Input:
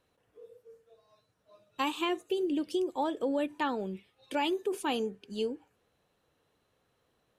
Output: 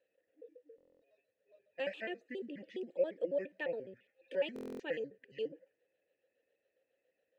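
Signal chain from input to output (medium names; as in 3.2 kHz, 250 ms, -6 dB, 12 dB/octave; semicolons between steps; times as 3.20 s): pitch shift switched off and on -7.5 st, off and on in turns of 69 ms; vowel filter e; buffer glitch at 0.76/4.54 s, samples 1024, times 10; trim +4.5 dB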